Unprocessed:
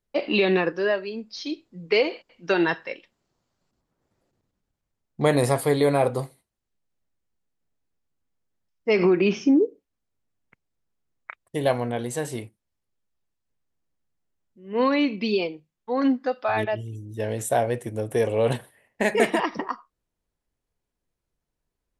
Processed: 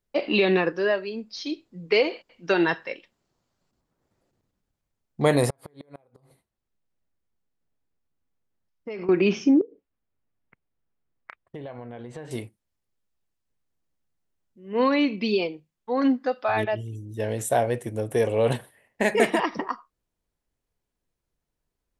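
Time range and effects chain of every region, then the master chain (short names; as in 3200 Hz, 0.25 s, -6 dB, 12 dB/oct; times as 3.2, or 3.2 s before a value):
5.5–9.09 high shelf 3800 Hz -7.5 dB + compressor, threshold -32 dBFS + flipped gate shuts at -25 dBFS, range -28 dB
9.61–12.31 LPF 2700 Hz + compressor 10:1, threshold -34 dBFS
whole clip: dry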